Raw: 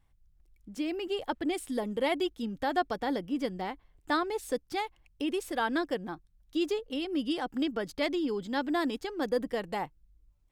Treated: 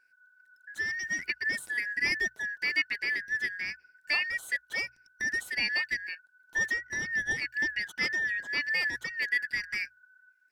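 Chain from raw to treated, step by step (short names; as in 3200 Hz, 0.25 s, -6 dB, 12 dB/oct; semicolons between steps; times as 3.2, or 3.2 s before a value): four-band scrambler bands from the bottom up 3142; notches 60/120 Hz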